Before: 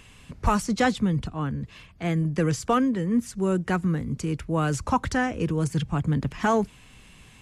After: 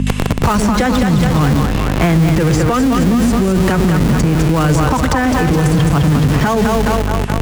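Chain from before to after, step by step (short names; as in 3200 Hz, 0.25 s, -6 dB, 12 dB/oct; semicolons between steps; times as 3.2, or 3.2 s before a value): gate with hold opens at -40 dBFS; on a send: split-band echo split 470 Hz, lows 0.109 s, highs 0.209 s, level -5 dB; on the sum: hum 50 Hz, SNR 14 dB; in parallel at -5 dB: Schmitt trigger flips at -31.5 dBFS; on the sum: maximiser +17 dB; three-band squash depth 100%; gain -6 dB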